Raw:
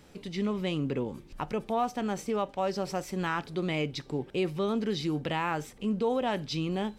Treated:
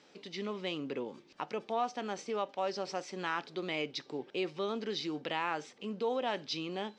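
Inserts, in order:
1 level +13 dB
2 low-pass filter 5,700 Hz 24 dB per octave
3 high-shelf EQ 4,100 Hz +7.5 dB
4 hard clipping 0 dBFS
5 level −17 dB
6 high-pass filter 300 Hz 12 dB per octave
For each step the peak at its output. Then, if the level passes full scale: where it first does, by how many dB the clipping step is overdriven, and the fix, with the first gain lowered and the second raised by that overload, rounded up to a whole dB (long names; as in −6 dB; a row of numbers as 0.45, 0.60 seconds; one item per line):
−5.0, −5.0, −4.0, −4.0, −21.0, −20.0 dBFS
no step passes full scale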